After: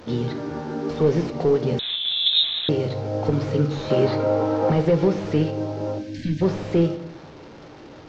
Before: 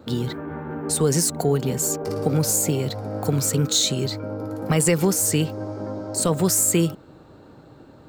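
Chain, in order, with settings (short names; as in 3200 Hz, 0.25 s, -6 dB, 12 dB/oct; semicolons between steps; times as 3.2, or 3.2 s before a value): delta modulation 32 kbps, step -38 dBFS; 3.9–4.7 bell 940 Hz +12 dB 2.5 oct; 5.98–6.42 spectral gain 340–1500 Hz -29 dB; bell 440 Hz +5 dB 2.3 oct; reverb RT60 0.70 s, pre-delay 10 ms, DRR 7 dB; 1.79–2.69 inverted band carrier 3900 Hz; gain -3 dB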